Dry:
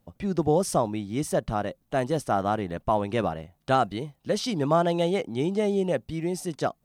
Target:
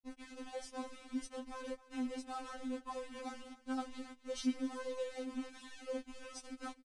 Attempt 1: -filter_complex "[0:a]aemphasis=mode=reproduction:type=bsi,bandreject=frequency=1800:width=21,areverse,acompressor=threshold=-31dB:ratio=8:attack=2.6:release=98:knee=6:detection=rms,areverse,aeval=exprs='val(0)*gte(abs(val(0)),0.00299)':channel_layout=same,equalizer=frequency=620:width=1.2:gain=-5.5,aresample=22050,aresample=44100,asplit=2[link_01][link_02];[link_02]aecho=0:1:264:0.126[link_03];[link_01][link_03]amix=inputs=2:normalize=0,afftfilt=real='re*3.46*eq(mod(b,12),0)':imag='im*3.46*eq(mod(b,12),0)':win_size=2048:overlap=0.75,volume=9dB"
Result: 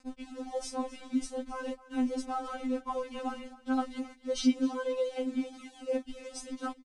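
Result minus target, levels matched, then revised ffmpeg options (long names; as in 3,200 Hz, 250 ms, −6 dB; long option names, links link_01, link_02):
downward compressor: peak gain reduction −9 dB
-filter_complex "[0:a]aemphasis=mode=reproduction:type=bsi,bandreject=frequency=1800:width=21,areverse,acompressor=threshold=-41.5dB:ratio=8:attack=2.6:release=98:knee=6:detection=rms,areverse,aeval=exprs='val(0)*gte(abs(val(0)),0.00299)':channel_layout=same,equalizer=frequency=620:width=1.2:gain=-5.5,aresample=22050,aresample=44100,asplit=2[link_01][link_02];[link_02]aecho=0:1:264:0.126[link_03];[link_01][link_03]amix=inputs=2:normalize=0,afftfilt=real='re*3.46*eq(mod(b,12),0)':imag='im*3.46*eq(mod(b,12),0)':win_size=2048:overlap=0.75,volume=9dB"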